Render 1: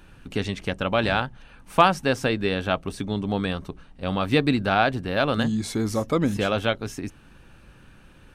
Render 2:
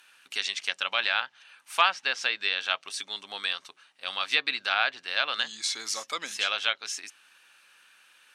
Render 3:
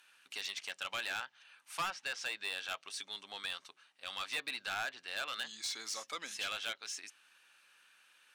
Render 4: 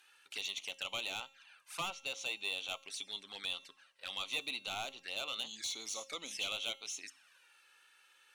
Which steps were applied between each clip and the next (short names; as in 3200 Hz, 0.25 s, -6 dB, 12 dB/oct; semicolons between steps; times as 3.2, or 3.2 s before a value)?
Bessel high-pass 2200 Hz, order 2; treble ducked by the level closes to 2900 Hz, closed at -27.5 dBFS; dynamic EQ 5300 Hz, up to +6 dB, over -49 dBFS, Q 0.73; gain +4 dB
soft clip -24 dBFS, distortion -6 dB; gain -7 dB
resonator 270 Hz, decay 0.67 s, mix 50%; envelope flanger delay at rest 2.7 ms, full sweep at -45.5 dBFS; gain +8.5 dB